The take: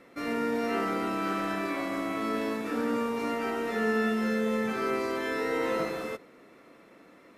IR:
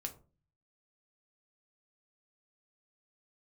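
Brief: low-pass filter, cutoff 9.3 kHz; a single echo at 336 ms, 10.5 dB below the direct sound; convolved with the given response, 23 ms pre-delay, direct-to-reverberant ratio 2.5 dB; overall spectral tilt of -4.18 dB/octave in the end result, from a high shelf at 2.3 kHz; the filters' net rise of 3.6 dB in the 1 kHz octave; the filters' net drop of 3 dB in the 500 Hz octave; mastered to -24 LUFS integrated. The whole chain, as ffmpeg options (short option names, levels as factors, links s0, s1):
-filter_complex "[0:a]lowpass=9300,equalizer=f=500:t=o:g=-5,equalizer=f=1000:t=o:g=8,highshelf=f=2300:g=-7.5,aecho=1:1:336:0.299,asplit=2[s0][s1];[1:a]atrim=start_sample=2205,adelay=23[s2];[s1][s2]afir=irnorm=-1:irlink=0,volume=0.944[s3];[s0][s3]amix=inputs=2:normalize=0,volume=1.58"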